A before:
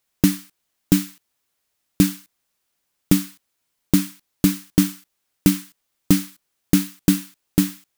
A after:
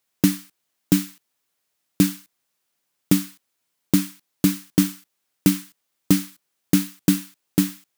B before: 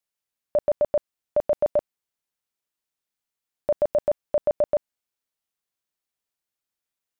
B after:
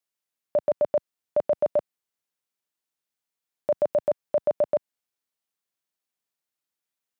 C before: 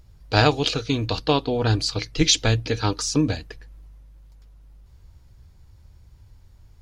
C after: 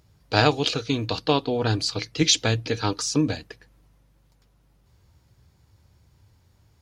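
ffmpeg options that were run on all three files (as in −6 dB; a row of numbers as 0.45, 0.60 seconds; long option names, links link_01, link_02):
-af "highpass=110,volume=-1dB"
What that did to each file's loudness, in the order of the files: −1.5, −1.0, −1.5 LU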